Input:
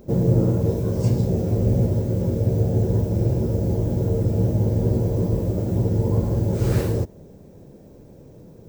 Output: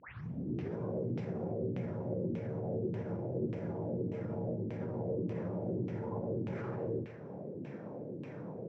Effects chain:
turntable start at the beginning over 0.77 s
downward compressor 2.5 to 1, threshold −37 dBFS, peak gain reduction 15 dB
Chebyshev low-pass with heavy ripple 7,700 Hz, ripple 6 dB
tilt shelving filter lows −5.5 dB, about 660 Hz
brickwall limiter −39 dBFS, peak gain reduction 7.5 dB
repeating echo 117 ms, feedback 46%, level −11 dB
auto-filter low-pass saw down 1.7 Hz 270–2,700 Hz
high-pass filter 130 Hz 24 dB per octave
low-shelf EQ 250 Hz +8.5 dB
level +6 dB

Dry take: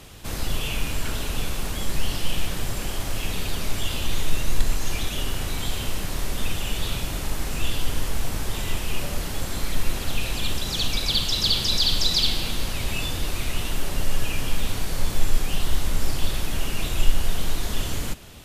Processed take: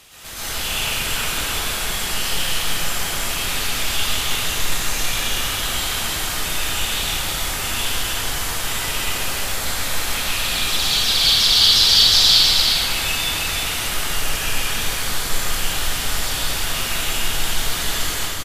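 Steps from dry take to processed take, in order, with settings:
tilt shelving filter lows −8 dB, about 660 Hz
on a send: single-tap delay 316 ms −4 dB
on the sum: dense smooth reverb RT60 1.7 s, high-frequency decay 0.5×, pre-delay 100 ms, DRR −9.5 dB
level −6.5 dB

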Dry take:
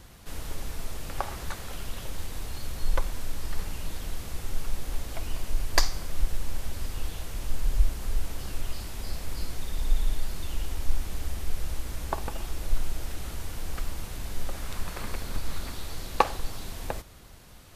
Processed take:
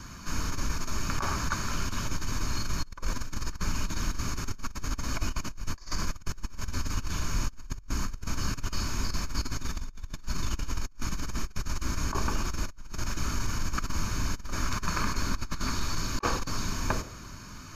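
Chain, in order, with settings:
convolution reverb RT60 0.70 s, pre-delay 3 ms, DRR 14.5 dB
compressor whose output falls as the input rises −28 dBFS, ratio −0.5

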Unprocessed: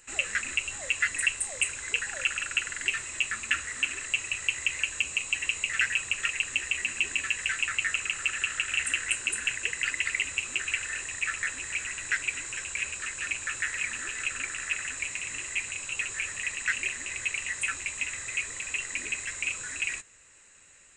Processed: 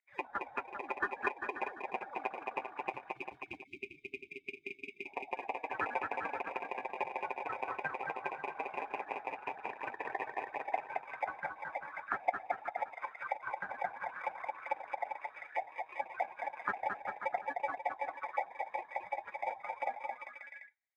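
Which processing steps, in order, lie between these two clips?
spectral dynamics exaggerated over time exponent 2
single-sideband voice off tune −240 Hz 220–3,100 Hz
in parallel at −4.5 dB: decimation without filtering 31×
on the sum: time-frequency box erased 0:02.90–0:05.06, 410–2,100 Hz
on a send: bouncing-ball delay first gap 220 ms, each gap 0.8×, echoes 5
on the sum: envelope filter 790–2,100 Hz, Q 6.1, down, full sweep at −33.5 dBFS
level +12.5 dB

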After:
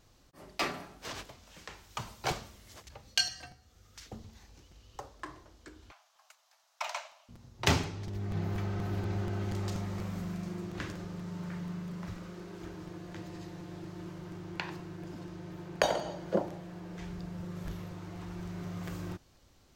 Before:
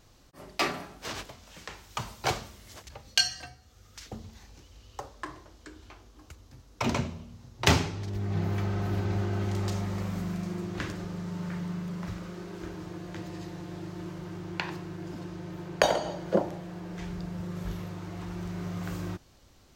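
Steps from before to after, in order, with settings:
0:05.91–0:07.29: Butterworth high-pass 610 Hz 72 dB per octave
regular buffer underruns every 0.24 s, samples 256, repeat, from 0:00.39
level −4.5 dB

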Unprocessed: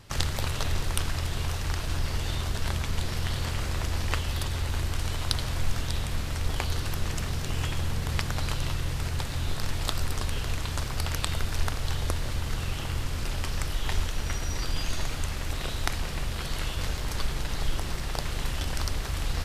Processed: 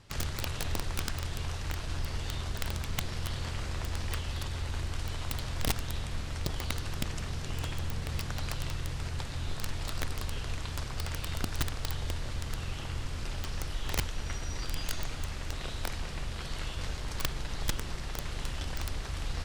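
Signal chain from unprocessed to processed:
low-pass filter 9,200 Hz 12 dB per octave
wrap-around overflow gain 17.5 dB
level −5.5 dB

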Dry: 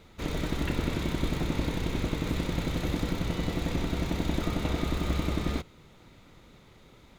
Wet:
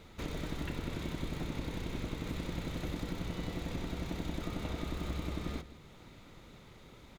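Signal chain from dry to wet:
downward compressor 2 to 1, threshold −41 dBFS, peak gain reduction 10.5 dB
on a send: single-tap delay 164 ms −14.5 dB

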